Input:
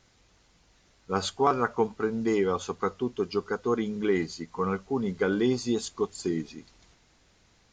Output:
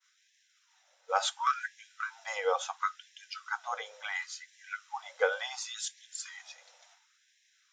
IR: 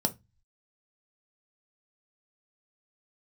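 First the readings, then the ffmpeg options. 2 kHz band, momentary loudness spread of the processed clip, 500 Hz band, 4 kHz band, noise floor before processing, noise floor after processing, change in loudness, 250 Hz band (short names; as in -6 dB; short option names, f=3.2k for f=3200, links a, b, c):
+1.5 dB, 14 LU, -10.0 dB, +0.5 dB, -64 dBFS, -71 dBFS, -6.5 dB, under -40 dB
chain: -filter_complex "[0:a]agate=range=-33dB:threshold=-58dB:ratio=3:detection=peak,acrossover=split=350[a][b];[a]acompressor=threshold=-38dB:ratio=5[c];[c][b]amix=inputs=2:normalize=0,asplit=2[d][e];[1:a]atrim=start_sample=2205,afade=t=out:st=0.21:d=0.01,atrim=end_sample=9702[f];[e][f]afir=irnorm=-1:irlink=0,volume=-12.5dB[g];[d][g]amix=inputs=2:normalize=0,afftfilt=real='re*gte(b*sr/1024,460*pow(1600/460,0.5+0.5*sin(2*PI*0.71*pts/sr)))':imag='im*gte(b*sr/1024,460*pow(1600/460,0.5+0.5*sin(2*PI*0.71*pts/sr)))':win_size=1024:overlap=0.75"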